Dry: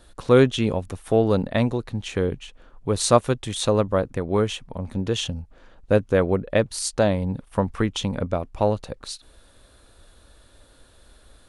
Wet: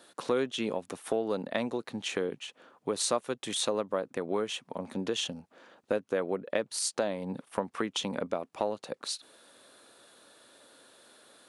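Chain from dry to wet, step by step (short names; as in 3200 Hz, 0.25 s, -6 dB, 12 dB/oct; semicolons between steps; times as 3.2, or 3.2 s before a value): Bessel high-pass 280 Hz, order 4; compressor 3:1, threshold -29 dBFS, peak gain reduction 14 dB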